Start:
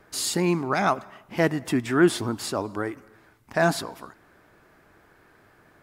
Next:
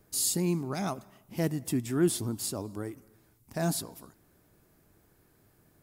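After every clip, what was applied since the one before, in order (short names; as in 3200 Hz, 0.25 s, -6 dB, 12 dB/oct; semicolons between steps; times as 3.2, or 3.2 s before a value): EQ curve 150 Hz 0 dB, 1600 Hz -15 dB, 13000 Hz +8 dB; gain -2 dB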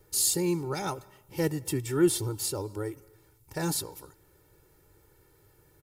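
comb 2.2 ms, depth 99%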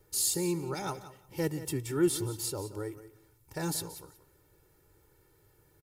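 feedback echo 0.178 s, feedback 15%, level -14 dB; gain -3.5 dB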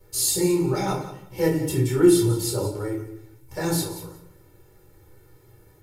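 reverb RT60 0.55 s, pre-delay 5 ms, DRR -6 dB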